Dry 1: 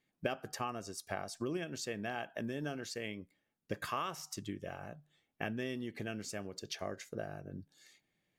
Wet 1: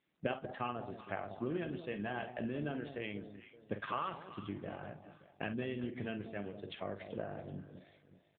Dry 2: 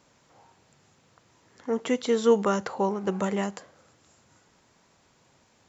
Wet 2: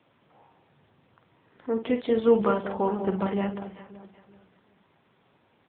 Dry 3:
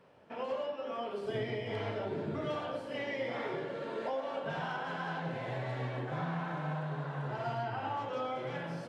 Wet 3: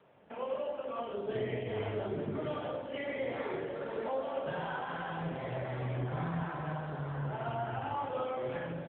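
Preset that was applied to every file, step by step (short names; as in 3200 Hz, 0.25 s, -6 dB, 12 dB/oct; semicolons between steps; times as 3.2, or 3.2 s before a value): doubler 49 ms -9 dB; echo with dull and thin repeats by turns 0.191 s, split 890 Hz, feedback 56%, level -9 dB; AMR-NB 7.95 kbps 8000 Hz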